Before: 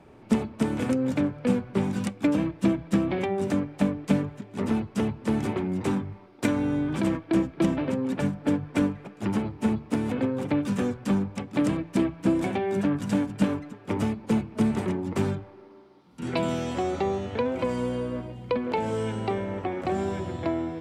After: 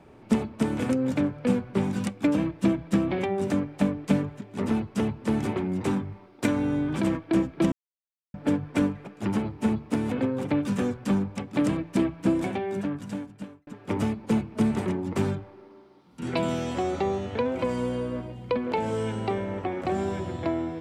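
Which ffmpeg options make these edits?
ffmpeg -i in.wav -filter_complex "[0:a]asplit=4[link_01][link_02][link_03][link_04];[link_01]atrim=end=7.72,asetpts=PTS-STARTPTS,afade=type=out:start_time=7.716:duration=0.004:curve=hsin[link_05];[link_02]atrim=start=7.72:end=8.34,asetpts=PTS-STARTPTS,volume=0[link_06];[link_03]atrim=start=8.34:end=13.67,asetpts=PTS-STARTPTS,afade=type=in:duration=0.004:curve=hsin,afade=type=out:start_time=3.91:duration=1.42[link_07];[link_04]atrim=start=13.67,asetpts=PTS-STARTPTS,afade=type=in:duration=0.004:curve=hsin[link_08];[link_05][link_06][link_07][link_08]concat=n=4:v=0:a=1" out.wav

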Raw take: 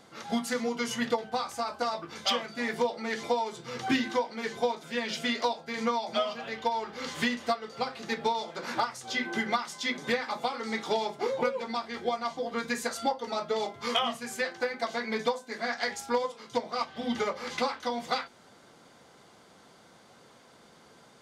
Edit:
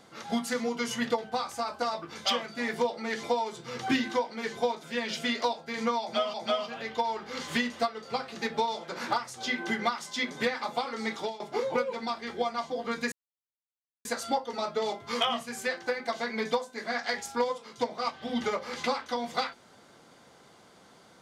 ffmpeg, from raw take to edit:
ffmpeg -i in.wav -filter_complex "[0:a]asplit=4[link_01][link_02][link_03][link_04];[link_01]atrim=end=6.342[link_05];[link_02]atrim=start=6.008:end=11.07,asetpts=PTS-STARTPTS,afade=type=out:start_time=4.792:duration=0.27:silence=0.105925[link_06];[link_03]atrim=start=11.07:end=12.79,asetpts=PTS-STARTPTS,afade=type=in:duration=0.004:curve=hsin:silence=0.105925,afade=type=out:start_time=1.716:duration=0.004:curve=hsin,apad=pad_dur=0.93[link_07];[link_04]atrim=start=12.79,asetpts=PTS-STARTPTS,afade=type=in:duration=0.004:curve=hsin[link_08];[link_06][link_07][link_08]concat=n=3:v=0:a=1[link_09];[link_05][link_09]acrossfade=duration=0.004:curve1=hsin:curve2=hsin" out.wav

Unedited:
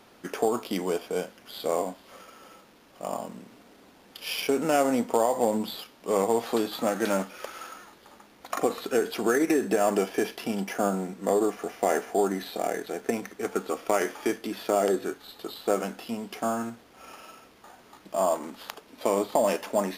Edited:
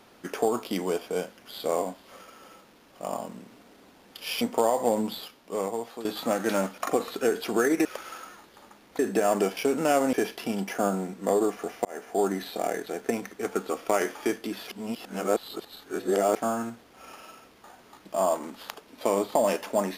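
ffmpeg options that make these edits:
ffmpeg -i in.wav -filter_complex "[0:a]asplit=11[link_01][link_02][link_03][link_04][link_05][link_06][link_07][link_08][link_09][link_10][link_11];[link_01]atrim=end=4.412[link_12];[link_02]atrim=start=4.968:end=6.61,asetpts=PTS-STARTPTS,afade=type=out:start_time=0.662:duration=0.98:silence=0.188365[link_13];[link_03]atrim=start=6.61:end=7.342,asetpts=PTS-STARTPTS,afade=type=in:duration=0.004:curve=hsin:silence=0.188365[link_14];[link_04]atrim=start=8.478:end=9.552[link_15];[link_05]atrim=start=7.338:end=8.482[link_16];[link_06]atrim=start=9.548:end=10.132[link_17];[link_07]atrim=start=4.408:end=4.972[link_18];[link_08]atrim=start=10.128:end=11.85,asetpts=PTS-STARTPTS,afade=type=out:start_time=1.718:duration=0.004:curve=hsin[link_19];[link_09]atrim=start=11.85:end=14.682,asetpts=PTS-STARTPTS,afade=type=in:duration=0.39[link_20];[link_10]atrim=start=14.678:end=16.362,asetpts=PTS-STARTPTS,areverse[link_21];[link_11]atrim=start=16.358[link_22];[link_13][link_14]concat=n=2:v=0:a=1[link_23];[link_12][link_23]acrossfade=duration=0.004:curve1=hsin:curve2=hsin[link_24];[link_24][link_15]acrossfade=duration=0.004:curve1=hsin:curve2=hsin[link_25];[link_25][link_16]acrossfade=duration=0.004:curve1=hsin:curve2=hsin[link_26];[link_26][link_17]acrossfade=duration=0.004:curve1=hsin:curve2=hsin[link_27];[link_27][link_18]acrossfade=duration=0.004:curve1=hsin:curve2=hsin[link_28];[link_19][link_20]concat=n=2:v=0:a=1[link_29];[link_28][link_29]acrossfade=duration=0.004:curve1=hsin:curve2=hsin[link_30];[link_30][link_21]acrossfade=duration=0.004:curve1=hsin:curve2=hsin[link_31];[link_31][link_22]acrossfade=duration=0.004:curve1=hsin:curve2=hsin" out.wav

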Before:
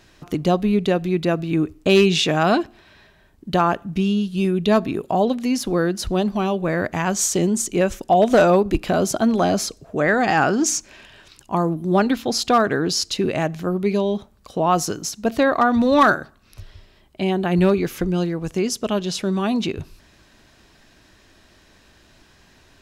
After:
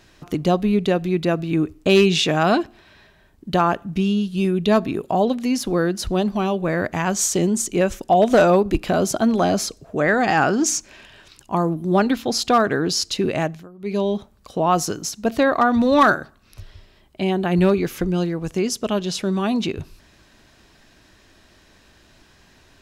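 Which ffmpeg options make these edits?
ffmpeg -i in.wav -filter_complex "[0:a]asplit=3[link_01][link_02][link_03];[link_01]atrim=end=13.68,asetpts=PTS-STARTPTS,afade=type=out:start_time=13.43:duration=0.25:silence=0.0794328[link_04];[link_02]atrim=start=13.68:end=13.77,asetpts=PTS-STARTPTS,volume=-22dB[link_05];[link_03]atrim=start=13.77,asetpts=PTS-STARTPTS,afade=type=in:duration=0.25:silence=0.0794328[link_06];[link_04][link_05][link_06]concat=n=3:v=0:a=1" out.wav

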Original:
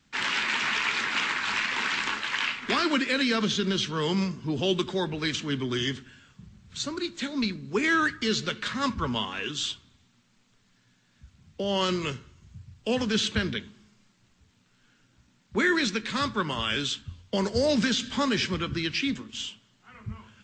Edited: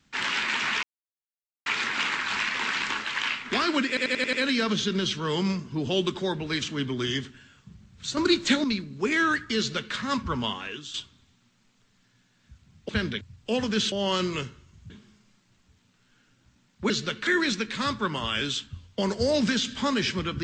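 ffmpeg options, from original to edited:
ffmpeg -i in.wav -filter_complex "[0:a]asplit=16[link_01][link_02][link_03][link_04][link_05][link_06][link_07][link_08][link_09][link_10][link_11][link_12][link_13][link_14][link_15][link_16];[link_01]atrim=end=0.83,asetpts=PTS-STARTPTS,afade=type=out:start_time=0.826:duration=0.004:curve=hsin,apad=pad_dur=0.83[link_17];[link_02]atrim=start=0.83:end=3.142,asetpts=PTS-STARTPTS,afade=type=in:duration=0.004:curve=hsin[link_18];[link_03]atrim=start=3.048:end=3.142[link_19];[link_04]atrim=start=3.048:end=3.142[link_20];[link_05]atrim=start=3.048:end=3.142[link_21];[link_06]atrim=start=3.048:end=3.142[link_22];[link_07]atrim=start=3.048:end=6.892[link_23];[link_08]atrim=start=6.888:end=7.362,asetpts=PTS-STARTPTS,volume=10dB[link_24];[link_09]atrim=start=7.358:end=9.66,asetpts=PTS-STARTPTS,afade=type=out:start_time=1.882:duration=0.42:silence=0.237137[link_25];[link_10]atrim=start=9.66:end=11.612,asetpts=PTS-STARTPTS,afade=type=in:duration=0.004:curve=hsin:silence=0.237137[link_26];[link_11]atrim=start=13.298:end=13.622[link_27];[link_12]atrim=start=12.588:end=13.302[link_28];[link_13]atrim=start=11.608:end=12.592[link_29];[link_14]atrim=start=13.618:end=15.622[link_30];[link_15]atrim=start=8.298:end=8.672[link_31];[link_16]atrim=start=15.618[link_32];[link_17][link_18]concat=n=2:v=0:a=1[link_33];[link_33][link_19]acrossfade=duration=0.004:curve1=hsin:curve2=hsin[link_34];[link_34][link_20]acrossfade=duration=0.004:curve1=hsin:curve2=hsin[link_35];[link_35][link_21]acrossfade=duration=0.004:curve1=hsin:curve2=hsin[link_36];[link_36][link_22]acrossfade=duration=0.004:curve1=hsin:curve2=hsin[link_37];[link_37][link_23]acrossfade=duration=0.004:curve1=hsin:curve2=hsin[link_38];[link_38][link_24]acrossfade=duration=0.004:curve1=hsin:curve2=hsin[link_39];[link_25][link_26]concat=n=2:v=0:a=1[link_40];[link_39][link_40]acrossfade=duration=0.004:curve1=hsin:curve2=hsin[link_41];[link_41][link_27]acrossfade=duration=0.004:curve1=hsin:curve2=hsin[link_42];[link_42][link_28]acrossfade=duration=0.004:curve1=hsin:curve2=hsin[link_43];[link_43][link_29]acrossfade=duration=0.004:curve1=hsin:curve2=hsin[link_44];[link_44][link_30]acrossfade=duration=0.004:curve1=hsin:curve2=hsin[link_45];[link_45][link_31]acrossfade=duration=0.004:curve1=hsin:curve2=hsin[link_46];[link_46][link_32]acrossfade=duration=0.004:curve1=hsin:curve2=hsin" out.wav

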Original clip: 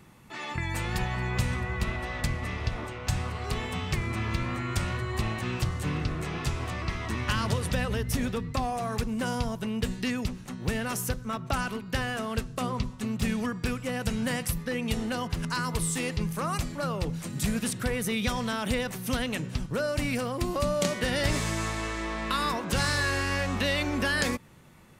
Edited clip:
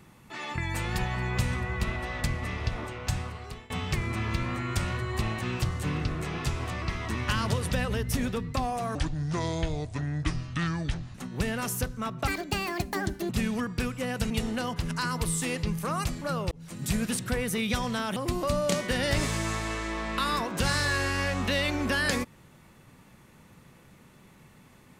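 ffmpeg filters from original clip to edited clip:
ffmpeg -i in.wav -filter_complex "[0:a]asplit=9[link_01][link_02][link_03][link_04][link_05][link_06][link_07][link_08][link_09];[link_01]atrim=end=3.7,asetpts=PTS-STARTPTS,afade=type=out:start_time=3.02:duration=0.68:silence=0.0794328[link_10];[link_02]atrim=start=3.7:end=8.954,asetpts=PTS-STARTPTS,afade=type=in:duration=0.004:curve=hsin:silence=0.0794328[link_11];[link_03]atrim=start=8.95:end=10.42,asetpts=PTS-STARTPTS,asetrate=29547,aresample=44100[link_12];[link_04]atrim=start=10.416:end=11.554[link_13];[link_05]atrim=start=11.55:end=13.15,asetpts=PTS-STARTPTS,asetrate=69237,aresample=44100[link_14];[link_06]atrim=start=13.146:end=14.162[link_15];[link_07]atrim=start=14.838:end=17.05,asetpts=PTS-STARTPTS,afade=type=out:start_time=2.208:duration=0.004:curve=hsin[link_16];[link_08]atrim=start=17.05:end=18.702,asetpts=PTS-STARTPTS,afade=type=in:duration=0.36[link_17];[link_09]atrim=start=20.288[link_18];[link_10][link_11]concat=n=2:v=0:a=1[link_19];[link_19][link_12]acrossfade=duration=0.004:curve1=hsin:curve2=hsin[link_20];[link_20][link_13]acrossfade=duration=0.004:curve1=hsin:curve2=hsin[link_21];[link_21][link_14]acrossfade=duration=0.004:curve1=hsin:curve2=hsin[link_22];[link_22][link_15]acrossfade=duration=0.004:curve1=hsin:curve2=hsin[link_23];[link_16][link_17]concat=n=2:v=0:a=1[link_24];[link_23][link_24]acrossfade=duration=0.004:curve1=hsin:curve2=hsin[link_25];[link_25][link_18]acrossfade=duration=0.004:curve1=hsin:curve2=hsin" out.wav

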